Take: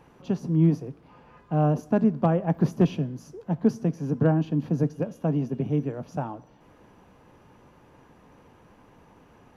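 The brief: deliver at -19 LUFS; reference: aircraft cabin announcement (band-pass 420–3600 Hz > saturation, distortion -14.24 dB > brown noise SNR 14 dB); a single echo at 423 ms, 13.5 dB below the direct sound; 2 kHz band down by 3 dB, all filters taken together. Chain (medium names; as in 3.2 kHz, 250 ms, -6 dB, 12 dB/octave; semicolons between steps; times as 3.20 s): band-pass 420–3600 Hz; peaking EQ 2 kHz -4 dB; delay 423 ms -13.5 dB; saturation -22.5 dBFS; brown noise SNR 14 dB; trim +16.5 dB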